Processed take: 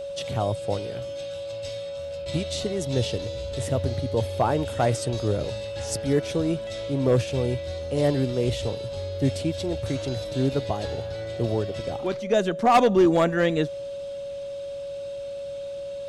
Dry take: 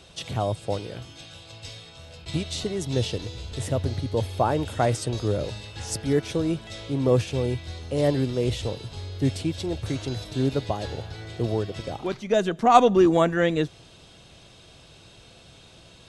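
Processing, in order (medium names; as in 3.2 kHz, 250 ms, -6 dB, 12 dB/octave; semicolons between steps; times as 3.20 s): overload inside the chain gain 12 dB; whistle 560 Hz -31 dBFS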